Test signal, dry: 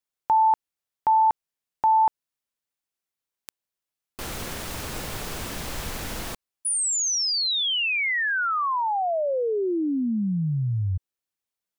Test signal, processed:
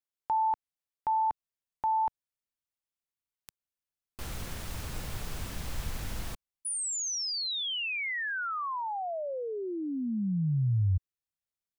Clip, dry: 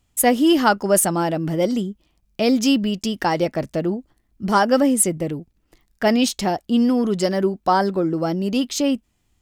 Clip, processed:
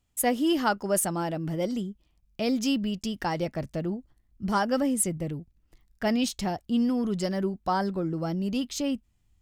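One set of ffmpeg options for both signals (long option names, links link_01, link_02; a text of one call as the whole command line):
ffmpeg -i in.wav -af "asubboost=boost=2.5:cutoff=190,volume=-8.5dB" out.wav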